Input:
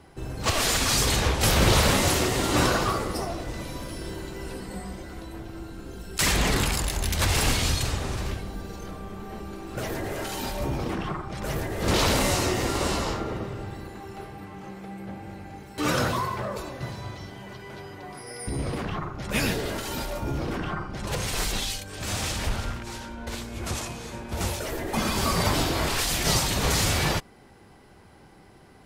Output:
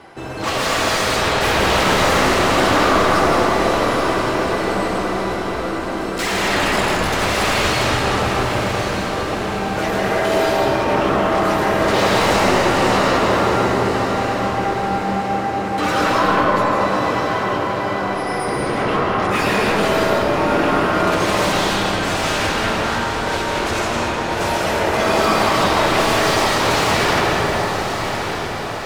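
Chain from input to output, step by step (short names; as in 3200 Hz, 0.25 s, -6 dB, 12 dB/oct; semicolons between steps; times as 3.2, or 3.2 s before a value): overdrive pedal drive 26 dB, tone 2100 Hz, clips at -7 dBFS; flange 0.27 Hz, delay 8.8 ms, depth 3.1 ms, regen -55%; diffused feedback echo 1.153 s, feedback 49%, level -7.5 dB; reverb RT60 4.1 s, pre-delay 0.115 s, DRR -3.5 dB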